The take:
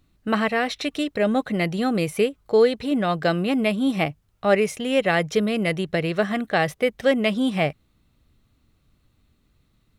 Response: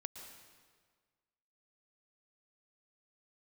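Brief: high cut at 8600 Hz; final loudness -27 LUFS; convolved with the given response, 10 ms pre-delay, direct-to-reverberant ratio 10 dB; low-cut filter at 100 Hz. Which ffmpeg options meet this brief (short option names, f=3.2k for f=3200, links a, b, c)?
-filter_complex "[0:a]highpass=100,lowpass=8.6k,asplit=2[a][b];[1:a]atrim=start_sample=2205,adelay=10[c];[b][c]afir=irnorm=-1:irlink=0,volume=-7dB[d];[a][d]amix=inputs=2:normalize=0,volume=-4.5dB"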